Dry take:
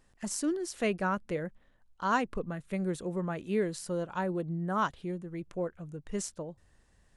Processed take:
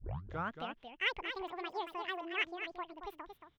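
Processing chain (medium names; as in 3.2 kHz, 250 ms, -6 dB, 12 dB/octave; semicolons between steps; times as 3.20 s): tape start-up on the opening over 1.76 s; bass shelf 430 Hz -6 dB; delay 454 ms -8 dB; speed mistake 7.5 ips tape played at 15 ips; FFT filter 1.1 kHz 0 dB, 3 kHz +4 dB, 8.5 kHz -20 dB; trim -5.5 dB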